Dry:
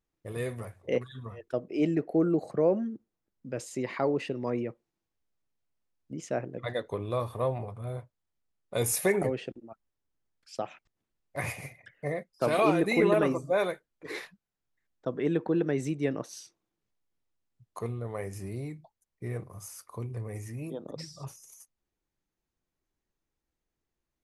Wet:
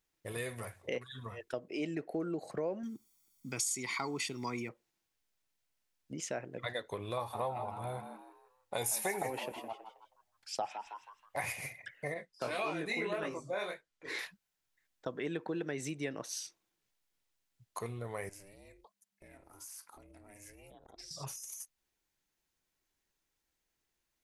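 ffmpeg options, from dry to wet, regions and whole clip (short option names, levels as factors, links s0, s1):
-filter_complex "[0:a]asettb=1/sr,asplit=3[s0][s1][s2];[s0]atrim=end=2.834[s3];[s1]atrim=start=2.83:end=4.69,asetpts=PTS-STARTPTS,afade=t=in:d=0.004:c=qsin,afade=t=out:st=1.856:d=0.004:c=qsin,bass=f=250:g=-2,treble=f=4000:g=15,aecho=1:1:0.9:0.83,atrim=end_sample=82026[s4];[s2]atrim=start=4.686[s5];[s3][s4]acrossfade=d=0.004:c1=hsin:c2=qsin[s6];[s6][s5]acrossfade=d=0.004:c1=qsin:c2=hsin,asettb=1/sr,asplit=3[s7][s8][s9];[s7]atrim=end=7.174[s10];[s8]atrim=start=7.17:end=11.45,asetpts=PTS-STARTPTS,afade=t=in:d=0.004:c=qsin,afade=t=out:st=4.276:d=0.004:c=qsin,equalizer=f=820:t=o:w=0.39:g=14.5,asplit=5[s11][s12][s13][s14][s15];[s12]adelay=160,afreqshift=97,volume=0.251[s16];[s13]adelay=320,afreqshift=194,volume=0.0881[s17];[s14]adelay=480,afreqshift=291,volume=0.0309[s18];[s15]adelay=640,afreqshift=388,volume=0.0107[s19];[s11][s16][s17][s18][s19]amix=inputs=5:normalize=0,atrim=end_sample=188748[s20];[s9]atrim=start=11.446[s21];[s10][s20]acrossfade=d=0.004:c1=hsin:c2=qsin[s22];[s22][s21]acrossfade=d=0.004:c1=qsin:c2=hsin,asettb=1/sr,asplit=3[s23][s24][s25];[s23]atrim=end=12.144[s26];[s24]atrim=start=12.14:end=14.19,asetpts=PTS-STARTPTS,afade=t=in:d=0.004:c=qsin,afade=t=out:st=2.046:d=0.004:c=qsin,lowpass=8300,flanger=delay=17.5:depth=7.4:speed=1.7[s27];[s25]atrim=start=14.186[s28];[s26][s27]acrossfade=d=0.004:c1=hsin:c2=qsin[s29];[s29][s28]acrossfade=d=0.004:c1=qsin:c2=hsin,asettb=1/sr,asplit=3[s30][s31][s32];[s30]atrim=end=18.294[s33];[s31]atrim=start=18.29:end=21.11,asetpts=PTS-STARTPTS,afade=t=in:d=0.004:c=qsin,afade=t=out:st=2.816:d=0.004:c=qsin,equalizer=f=70:t=o:w=2.6:g=-7,acompressor=threshold=0.00355:ratio=8:attack=3.2:release=140:knee=1:detection=peak,aeval=exprs='val(0)*sin(2*PI*200*n/s)':c=same[s34];[s32]atrim=start=21.106[s35];[s33][s34]acrossfade=d=0.004:c1=hsin:c2=qsin[s36];[s36][s35]acrossfade=d=0.004:c1=qsin:c2=hsin,tiltshelf=f=830:g=-6,bandreject=f=1200:w=15,acompressor=threshold=0.0112:ratio=2.5,volume=1.19"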